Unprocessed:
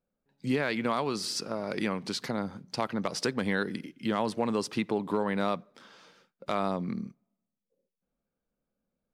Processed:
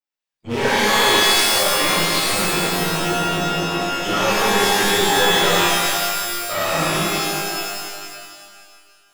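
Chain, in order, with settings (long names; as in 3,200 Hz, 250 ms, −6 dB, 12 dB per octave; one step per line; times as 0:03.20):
spectral dynamics exaggerated over time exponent 2
pitch vibrato 0.62 Hz 8.2 cents
frequency shifter −24 Hz
half-wave rectification
mid-hump overdrive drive 29 dB, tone 4,800 Hz, clips at −21.5 dBFS
frozen spectrum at 0:02.46, 1.29 s
reverb with rising layers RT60 2 s, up +12 semitones, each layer −2 dB, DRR −10.5 dB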